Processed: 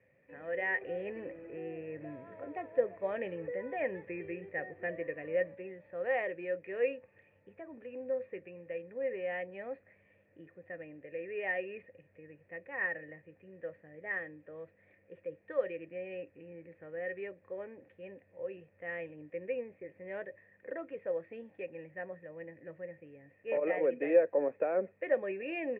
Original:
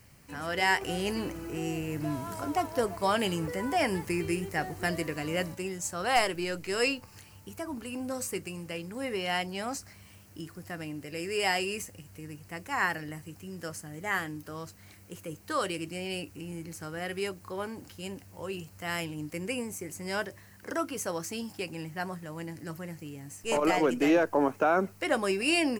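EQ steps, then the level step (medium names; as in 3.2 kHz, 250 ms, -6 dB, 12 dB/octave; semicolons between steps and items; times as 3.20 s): cascade formant filter e; high-pass 110 Hz; +4.5 dB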